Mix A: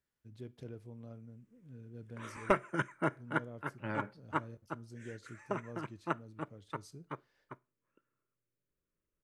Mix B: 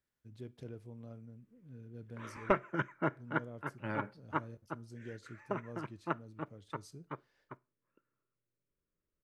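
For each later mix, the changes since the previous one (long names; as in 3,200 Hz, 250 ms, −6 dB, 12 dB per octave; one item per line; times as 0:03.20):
background: add high-frequency loss of the air 160 metres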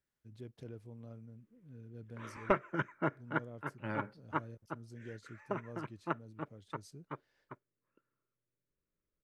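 reverb: off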